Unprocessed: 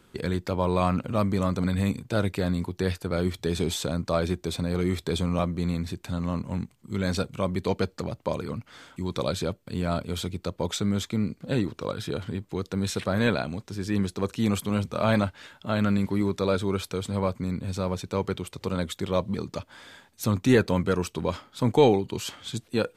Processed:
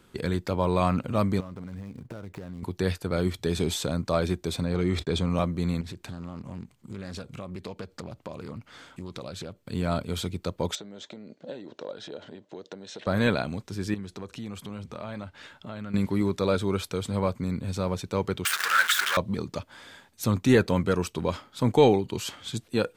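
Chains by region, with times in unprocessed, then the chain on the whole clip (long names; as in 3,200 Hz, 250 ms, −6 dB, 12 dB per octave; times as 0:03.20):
0:01.40–0:02.63: running median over 15 samples + downward compressor 16 to 1, threshold −34 dBFS
0:04.64–0:05.30: noise gate −43 dBFS, range −42 dB + high-frequency loss of the air 60 metres + level that may fall only so fast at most 89 dB per second
0:05.81–0:09.65: high-shelf EQ 11,000 Hz −3.5 dB + downward compressor 5 to 1, threshold −34 dBFS + highs frequency-modulated by the lows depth 0.26 ms
0:10.75–0:13.07: downward compressor 12 to 1, threshold −32 dBFS + loudspeaker in its box 300–6,100 Hz, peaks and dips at 590 Hz +9 dB, 1,200 Hz −9 dB, 2,300 Hz −7 dB, 4,900 Hz −5 dB
0:13.94–0:15.94: high-shelf EQ 11,000 Hz −12 dB + downward compressor 3 to 1, threshold −37 dBFS
0:18.45–0:19.17: converter with a step at zero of −26.5 dBFS + leveller curve on the samples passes 1 + high-pass with resonance 1,500 Hz, resonance Q 5.3
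whole clip: no processing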